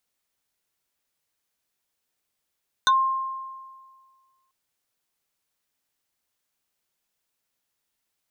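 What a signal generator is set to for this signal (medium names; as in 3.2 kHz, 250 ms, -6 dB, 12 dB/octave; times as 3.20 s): FM tone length 1.64 s, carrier 1.06 kHz, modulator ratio 2.41, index 2, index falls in 0.10 s exponential, decay 1.73 s, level -14 dB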